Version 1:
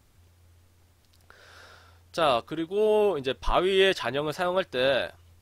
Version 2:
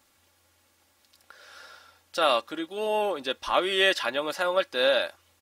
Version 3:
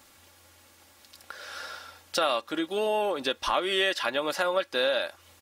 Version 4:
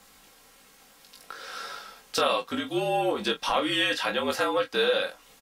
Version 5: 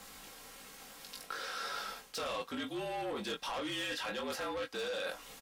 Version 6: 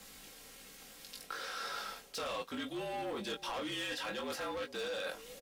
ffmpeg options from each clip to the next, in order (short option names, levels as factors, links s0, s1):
-af "highpass=f=680:p=1,aecho=1:1:3.6:0.49,volume=1.33"
-af "acompressor=threshold=0.0178:ratio=3,volume=2.66"
-af "afreqshift=-55,aecho=1:1:20|43:0.596|0.224"
-af "asoftclip=type=tanh:threshold=0.0501,areverse,acompressor=threshold=0.01:ratio=10,areverse,volume=1.5"
-filter_complex "[0:a]acrossover=split=790|1300[s0][s1][s2];[s0]aecho=1:1:408:0.211[s3];[s1]aeval=exprs='val(0)*gte(abs(val(0)),0.00158)':c=same[s4];[s3][s4][s2]amix=inputs=3:normalize=0,volume=0.891"